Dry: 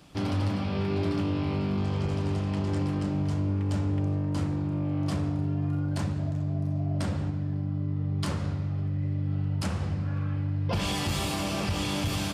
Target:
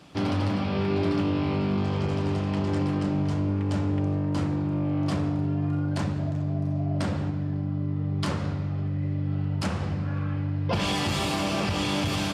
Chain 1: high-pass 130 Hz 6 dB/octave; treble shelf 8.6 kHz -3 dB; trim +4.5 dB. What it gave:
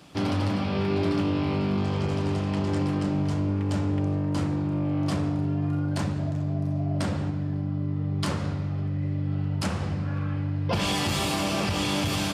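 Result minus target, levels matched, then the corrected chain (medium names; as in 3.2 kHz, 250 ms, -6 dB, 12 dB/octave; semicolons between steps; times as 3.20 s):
8 kHz band +3.5 dB
high-pass 130 Hz 6 dB/octave; treble shelf 8.6 kHz -11.5 dB; trim +4.5 dB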